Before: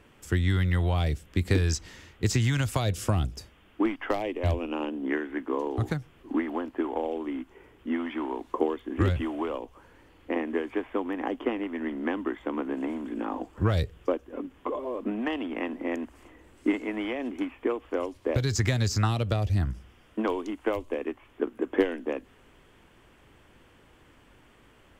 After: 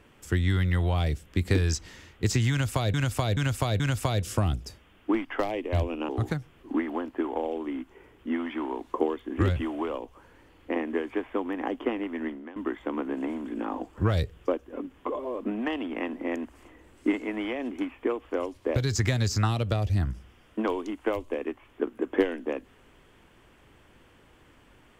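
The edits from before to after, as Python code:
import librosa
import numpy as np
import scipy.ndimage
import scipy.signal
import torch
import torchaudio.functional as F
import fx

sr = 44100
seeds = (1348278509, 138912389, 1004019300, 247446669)

y = fx.edit(x, sr, fx.repeat(start_s=2.51, length_s=0.43, count=4),
    fx.cut(start_s=4.8, length_s=0.89),
    fx.fade_out_to(start_s=11.86, length_s=0.3, curve='qua', floor_db=-17.0), tone=tone)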